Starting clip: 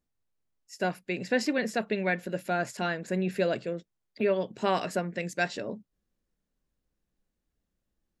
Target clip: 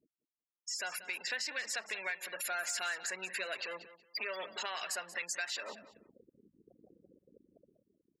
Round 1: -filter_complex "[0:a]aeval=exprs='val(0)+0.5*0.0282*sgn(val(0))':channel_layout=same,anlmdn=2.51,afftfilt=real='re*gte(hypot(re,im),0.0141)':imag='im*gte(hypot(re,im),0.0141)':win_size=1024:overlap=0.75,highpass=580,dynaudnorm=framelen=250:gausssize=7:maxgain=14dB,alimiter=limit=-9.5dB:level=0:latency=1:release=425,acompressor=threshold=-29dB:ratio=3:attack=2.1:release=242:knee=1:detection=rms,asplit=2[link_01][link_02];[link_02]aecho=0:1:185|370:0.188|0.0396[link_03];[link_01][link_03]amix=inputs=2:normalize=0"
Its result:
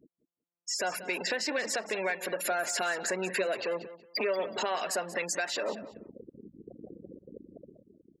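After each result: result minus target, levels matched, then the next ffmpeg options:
500 Hz band +8.5 dB; downward compressor: peak gain reduction −5.5 dB
-filter_complex "[0:a]aeval=exprs='val(0)+0.5*0.0282*sgn(val(0))':channel_layout=same,anlmdn=2.51,afftfilt=real='re*gte(hypot(re,im),0.0141)':imag='im*gte(hypot(re,im),0.0141)':win_size=1024:overlap=0.75,highpass=1500,dynaudnorm=framelen=250:gausssize=7:maxgain=14dB,alimiter=limit=-9.5dB:level=0:latency=1:release=425,acompressor=threshold=-29dB:ratio=3:attack=2.1:release=242:knee=1:detection=rms,asplit=2[link_01][link_02];[link_02]aecho=0:1:185|370:0.188|0.0396[link_03];[link_01][link_03]amix=inputs=2:normalize=0"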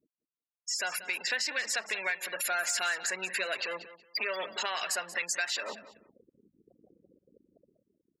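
downward compressor: peak gain reduction −6 dB
-filter_complex "[0:a]aeval=exprs='val(0)+0.5*0.0282*sgn(val(0))':channel_layout=same,anlmdn=2.51,afftfilt=real='re*gte(hypot(re,im),0.0141)':imag='im*gte(hypot(re,im),0.0141)':win_size=1024:overlap=0.75,highpass=1500,dynaudnorm=framelen=250:gausssize=7:maxgain=14dB,alimiter=limit=-9.5dB:level=0:latency=1:release=425,acompressor=threshold=-38dB:ratio=3:attack=2.1:release=242:knee=1:detection=rms,asplit=2[link_01][link_02];[link_02]aecho=0:1:185|370:0.188|0.0396[link_03];[link_01][link_03]amix=inputs=2:normalize=0"

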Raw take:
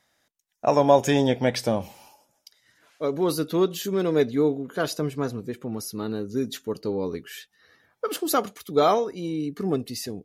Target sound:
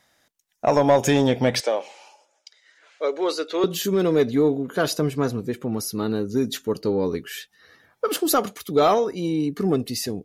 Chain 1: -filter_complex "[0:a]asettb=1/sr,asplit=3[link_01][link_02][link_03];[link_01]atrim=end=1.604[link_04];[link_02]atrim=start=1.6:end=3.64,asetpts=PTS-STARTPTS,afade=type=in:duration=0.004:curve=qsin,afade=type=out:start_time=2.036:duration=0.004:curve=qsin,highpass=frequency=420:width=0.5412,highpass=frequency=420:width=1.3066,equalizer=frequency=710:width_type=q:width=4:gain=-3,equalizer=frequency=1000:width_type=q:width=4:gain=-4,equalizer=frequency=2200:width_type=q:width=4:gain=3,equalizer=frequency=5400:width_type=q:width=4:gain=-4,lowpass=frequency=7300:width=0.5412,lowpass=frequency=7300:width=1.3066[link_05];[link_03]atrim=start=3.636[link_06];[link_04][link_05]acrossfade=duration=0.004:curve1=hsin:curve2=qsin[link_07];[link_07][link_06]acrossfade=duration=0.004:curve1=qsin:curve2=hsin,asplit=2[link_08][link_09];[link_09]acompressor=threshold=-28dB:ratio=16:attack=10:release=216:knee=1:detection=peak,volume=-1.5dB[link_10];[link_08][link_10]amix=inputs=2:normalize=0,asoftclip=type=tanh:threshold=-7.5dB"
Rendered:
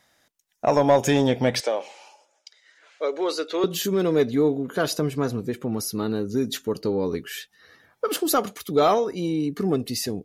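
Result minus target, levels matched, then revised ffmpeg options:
downward compressor: peak gain reduction +6 dB
-filter_complex "[0:a]asettb=1/sr,asplit=3[link_01][link_02][link_03];[link_01]atrim=end=1.604[link_04];[link_02]atrim=start=1.6:end=3.64,asetpts=PTS-STARTPTS,afade=type=in:duration=0.004:curve=qsin,afade=type=out:start_time=2.036:duration=0.004:curve=qsin,highpass=frequency=420:width=0.5412,highpass=frequency=420:width=1.3066,equalizer=frequency=710:width_type=q:width=4:gain=-3,equalizer=frequency=1000:width_type=q:width=4:gain=-4,equalizer=frequency=2200:width_type=q:width=4:gain=3,equalizer=frequency=5400:width_type=q:width=4:gain=-4,lowpass=frequency=7300:width=0.5412,lowpass=frequency=7300:width=1.3066[link_05];[link_03]atrim=start=3.636[link_06];[link_04][link_05]acrossfade=duration=0.004:curve1=hsin:curve2=qsin[link_07];[link_07][link_06]acrossfade=duration=0.004:curve1=qsin:curve2=hsin,asplit=2[link_08][link_09];[link_09]acompressor=threshold=-21.5dB:ratio=16:attack=10:release=216:knee=1:detection=peak,volume=-1.5dB[link_10];[link_08][link_10]amix=inputs=2:normalize=0,asoftclip=type=tanh:threshold=-7.5dB"

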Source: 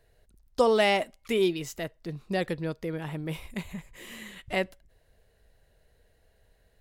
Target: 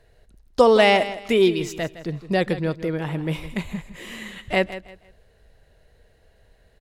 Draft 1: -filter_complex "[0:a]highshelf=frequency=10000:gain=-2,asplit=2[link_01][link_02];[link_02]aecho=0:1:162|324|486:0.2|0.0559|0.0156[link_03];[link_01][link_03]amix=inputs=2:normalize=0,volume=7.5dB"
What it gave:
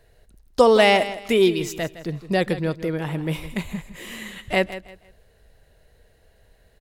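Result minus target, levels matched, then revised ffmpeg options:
8,000 Hz band +3.0 dB
-filter_complex "[0:a]highshelf=frequency=10000:gain=-12,asplit=2[link_01][link_02];[link_02]aecho=0:1:162|324|486:0.2|0.0559|0.0156[link_03];[link_01][link_03]amix=inputs=2:normalize=0,volume=7.5dB"

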